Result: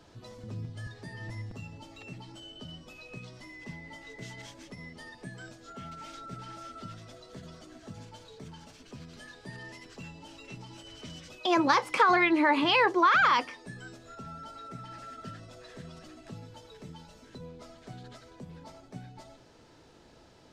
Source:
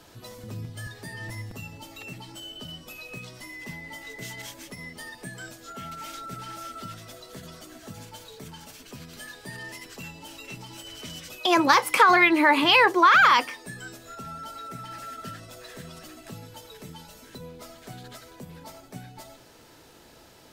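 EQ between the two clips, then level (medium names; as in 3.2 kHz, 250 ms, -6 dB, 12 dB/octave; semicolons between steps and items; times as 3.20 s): tone controls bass +1 dB, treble +13 dB; tape spacing loss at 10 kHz 28 dB; -2.5 dB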